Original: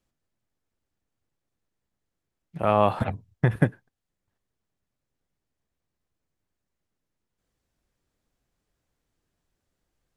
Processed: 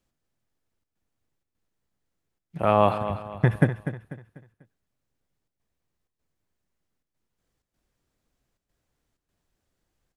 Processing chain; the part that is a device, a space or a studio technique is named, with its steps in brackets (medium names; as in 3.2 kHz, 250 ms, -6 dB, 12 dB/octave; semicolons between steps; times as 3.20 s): trance gate with a delay (trance gate "xxxxxxx.xxxx." 126 bpm -12 dB; feedback delay 246 ms, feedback 37%, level -11 dB); trim +1 dB